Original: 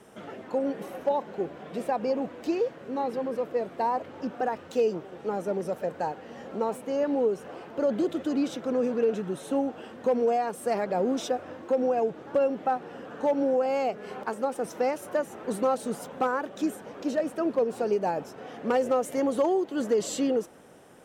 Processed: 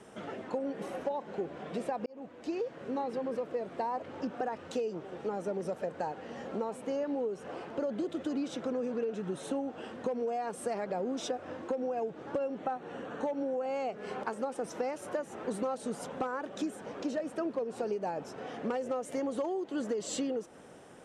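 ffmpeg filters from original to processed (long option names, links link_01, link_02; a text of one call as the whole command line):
ffmpeg -i in.wav -filter_complex "[0:a]asettb=1/sr,asplit=3[link_01][link_02][link_03];[link_01]atrim=end=12.584[link_04];[link_02]atrim=start=12.58:end=13.94,asetpts=PTS-STARTPTS,afade=type=in:duration=0.004:curve=qsin,afade=type=out:start_time=1.356:duration=0.004:curve=qsin,asuperstop=centerf=5000:order=4:qfactor=7.6[link_05];[link_03]atrim=start=13.936[link_06];[link_04][link_05]acrossfade=duration=0.004:curve1=hsin:curve2=qsin[link_07];[link_07][link_06]acrossfade=duration=0.004:curve1=qsin:curve2=hsin,asplit=2[link_08][link_09];[link_08]atrim=end=2.06,asetpts=PTS-STARTPTS,afade=type=out:start_time=2.056:duration=0.004:curve=hsin[link_10];[link_09]atrim=start=2.06,asetpts=PTS-STARTPTS,afade=type=in:duration=0.8[link_11];[link_10][link_11]concat=n=2:v=0:a=1,lowpass=frequency=10000:width=0.5412,lowpass=frequency=10000:width=1.3066,acompressor=threshold=-31dB:ratio=6" out.wav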